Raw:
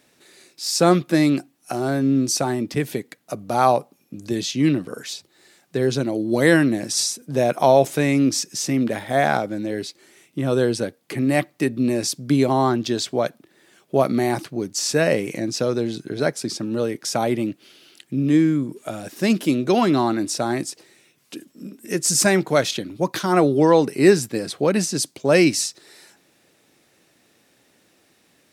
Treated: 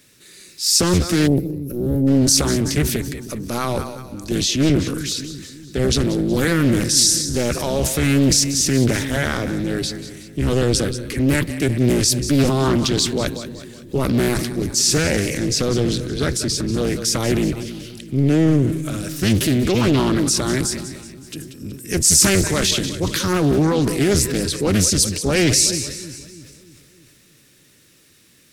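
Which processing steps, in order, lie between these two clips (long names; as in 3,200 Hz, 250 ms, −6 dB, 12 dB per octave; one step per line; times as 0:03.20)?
sub-octave generator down 1 octave, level −1 dB
brickwall limiter −10 dBFS, peak gain reduction 9.5 dB
on a send: echo with a time of its own for lows and highs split 380 Hz, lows 311 ms, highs 186 ms, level −14 dB
on the sum: gain on a spectral selection 0:01.27–0:02.07, 560–11,000 Hz −23 dB
high-shelf EQ 3,700 Hz +7.5 dB
transient designer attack −2 dB, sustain +6 dB
parametric band 750 Hz −13.5 dB 0.61 octaves
highs frequency-modulated by the lows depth 0.52 ms
level +3 dB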